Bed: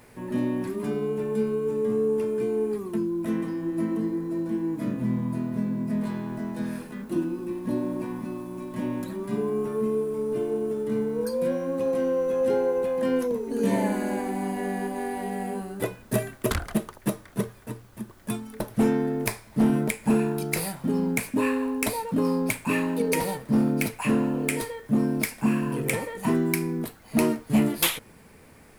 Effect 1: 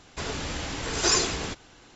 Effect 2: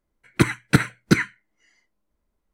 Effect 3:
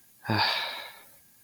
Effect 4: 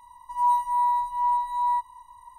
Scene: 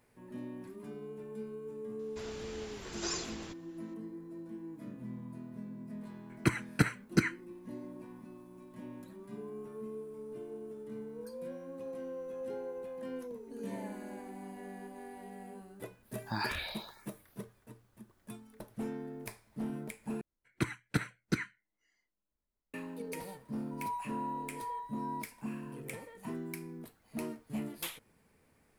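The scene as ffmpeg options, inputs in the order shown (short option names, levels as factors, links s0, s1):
-filter_complex "[2:a]asplit=2[s0][s1];[0:a]volume=0.141[s2];[s0]asuperstop=centerf=3600:order=4:qfactor=5.8[s3];[3:a]asplit=2[s4][s5];[s5]afreqshift=1.7[s6];[s4][s6]amix=inputs=2:normalize=1[s7];[s2]asplit=2[s8][s9];[s8]atrim=end=20.214[s10];[s1]atrim=end=2.53,asetpts=PTS-STARTPTS,volume=0.178[s11];[s9]atrim=start=22.736[s12];[1:a]atrim=end=1.95,asetpts=PTS-STARTPTS,volume=0.178,afade=t=in:d=0.004:c=hsin,afade=t=out:st=1.946:d=0.004:c=hsin,adelay=1990[s13];[s3]atrim=end=2.53,asetpts=PTS-STARTPTS,volume=0.299,afade=t=in:d=0.004:c=hsin,afade=t=out:st=2.526:d=0.004:c=hsin,adelay=6060[s14];[s7]atrim=end=1.43,asetpts=PTS-STARTPTS,volume=0.473,afade=t=in:d=0.05,afade=t=out:st=1.38:d=0.05,adelay=16020[s15];[4:a]atrim=end=2.38,asetpts=PTS-STARTPTS,volume=0.141,afade=t=in:d=0.004:c=hsin,afade=t=out:st=2.376:d=0.004:c=hsin,adelay=23420[s16];[s10][s11]acrossfade=d=0.004:c1=hsin:c2=hsin[s17];[s17][s12]acrossfade=d=0.004:c1=hsin:c2=hsin[s18];[s18][s13][s14][s15][s16]amix=inputs=5:normalize=0"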